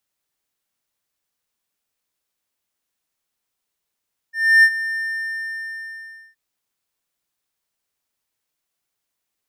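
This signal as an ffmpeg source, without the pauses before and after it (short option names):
-f lavfi -i "aevalsrc='0.562*(1-4*abs(mod(1800*t+0.25,1)-0.5))':d=2.02:s=44100,afade=t=in:d=0.302,afade=t=out:st=0.302:d=0.062:silence=0.188,afade=t=out:st=0.63:d=1.39"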